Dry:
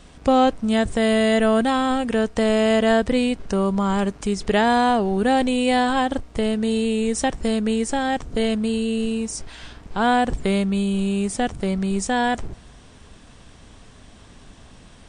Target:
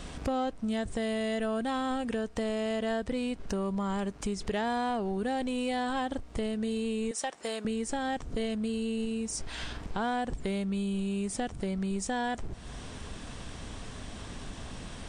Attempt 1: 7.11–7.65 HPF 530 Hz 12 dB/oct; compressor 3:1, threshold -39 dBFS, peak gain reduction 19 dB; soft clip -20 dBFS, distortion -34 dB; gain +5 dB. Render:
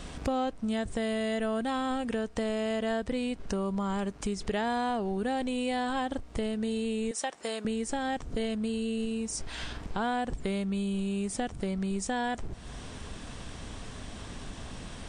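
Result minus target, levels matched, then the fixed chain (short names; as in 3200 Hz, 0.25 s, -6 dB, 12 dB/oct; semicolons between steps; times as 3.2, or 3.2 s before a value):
soft clip: distortion -10 dB
7.11–7.65 HPF 530 Hz 12 dB/oct; compressor 3:1, threshold -39 dBFS, peak gain reduction 19 dB; soft clip -26 dBFS, distortion -24 dB; gain +5 dB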